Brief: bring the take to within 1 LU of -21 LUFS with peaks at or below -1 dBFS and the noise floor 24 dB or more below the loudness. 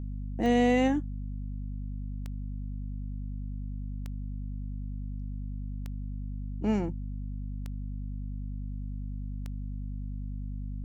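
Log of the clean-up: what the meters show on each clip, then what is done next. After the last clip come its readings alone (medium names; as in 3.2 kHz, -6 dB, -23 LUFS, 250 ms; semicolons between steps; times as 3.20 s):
clicks found 6; hum 50 Hz; highest harmonic 250 Hz; hum level -33 dBFS; loudness -34.5 LUFS; peak level -14.5 dBFS; loudness target -21.0 LUFS
-> de-click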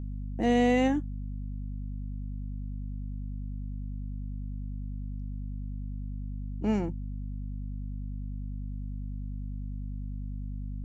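clicks found 0; hum 50 Hz; highest harmonic 250 Hz; hum level -33 dBFS
-> hum notches 50/100/150/200/250 Hz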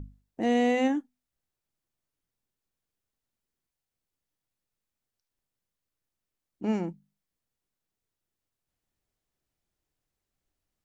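hum not found; loudness -28.0 LUFS; peak level -15.5 dBFS; loudness target -21.0 LUFS
-> trim +7 dB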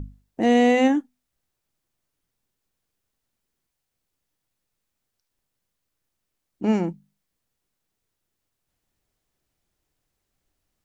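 loudness -21.0 LUFS; peak level -8.5 dBFS; noise floor -81 dBFS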